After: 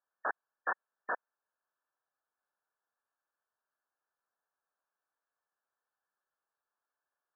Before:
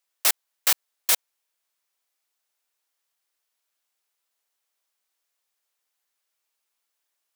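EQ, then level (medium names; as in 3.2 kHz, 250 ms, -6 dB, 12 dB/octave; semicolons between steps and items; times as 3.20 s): brick-wall FIR low-pass 1.8 kHz; bass shelf 340 Hz -9.5 dB; 0.0 dB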